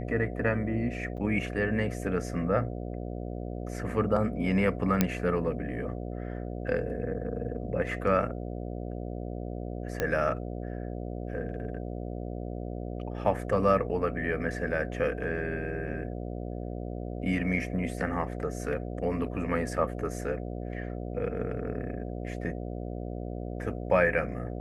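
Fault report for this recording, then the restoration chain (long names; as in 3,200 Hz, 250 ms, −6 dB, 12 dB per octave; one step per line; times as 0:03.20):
mains buzz 60 Hz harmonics 12 −36 dBFS
0:01.17–0:01.18: drop-out 7.3 ms
0:05.01: click −8 dBFS
0:10.00: click −14 dBFS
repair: click removal
hum removal 60 Hz, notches 12
repair the gap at 0:01.17, 7.3 ms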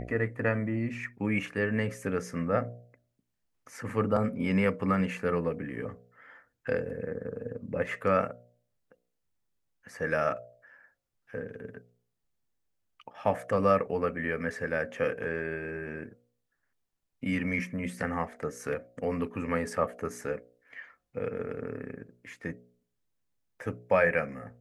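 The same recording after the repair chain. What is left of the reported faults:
none of them is left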